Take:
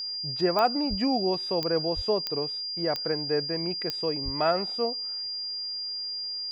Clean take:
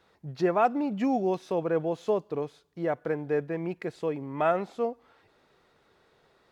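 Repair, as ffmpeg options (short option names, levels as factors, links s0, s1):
-filter_complex "[0:a]adeclick=t=4,bandreject=f=4800:w=30,asplit=3[s0][s1][s2];[s0]afade=t=out:st=0.89:d=0.02[s3];[s1]highpass=f=140:w=0.5412,highpass=f=140:w=1.3066,afade=t=in:st=0.89:d=0.02,afade=t=out:st=1.01:d=0.02[s4];[s2]afade=t=in:st=1.01:d=0.02[s5];[s3][s4][s5]amix=inputs=3:normalize=0,asplit=3[s6][s7][s8];[s6]afade=t=out:st=1.95:d=0.02[s9];[s7]highpass=f=140:w=0.5412,highpass=f=140:w=1.3066,afade=t=in:st=1.95:d=0.02,afade=t=out:st=2.07:d=0.02[s10];[s8]afade=t=in:st=2.07:d=0.02[s11];[s9][s10][s11]amix=inputs=3:normalize=0,asplit=3[s12][s13][s14];[s12]afade=t=out:st=4.24:d=0.02[s15];[s13]highpass=f=140:w=0.5412,highpass=f=140:w=1.3066,afade=t=in:st=4.24:d=0.02,afade=t=out:st=4.36:d=0.02[s16];[s14]afade=t=in:st=4.36:d=0.02[s17];[s15][s16][s17]amix=inputs=3:normalize=0"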